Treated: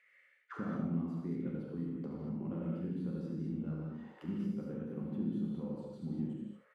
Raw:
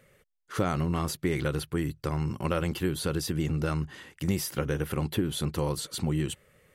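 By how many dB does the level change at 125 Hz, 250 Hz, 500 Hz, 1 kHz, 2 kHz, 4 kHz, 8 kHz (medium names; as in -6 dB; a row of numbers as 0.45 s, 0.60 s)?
-11.0 dB, -5.0 dB, -13.5 dB, -17.0 dB, -19.0 dB, under -25 dB, under -35 dB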